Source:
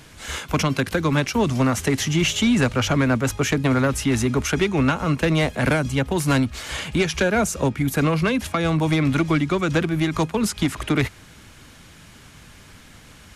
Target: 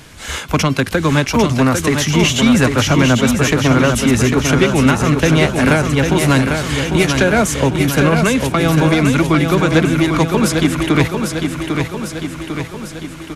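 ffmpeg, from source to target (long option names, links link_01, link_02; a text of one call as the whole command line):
ffmpeg -i in.wav -af "aecho=1:1:799|1598|2397|3196|3995|4794|5593|6392:0.531|0.313|0.185|0.109|0.0643|0.038|0.0224|0.0132,volume=6dB" out.wav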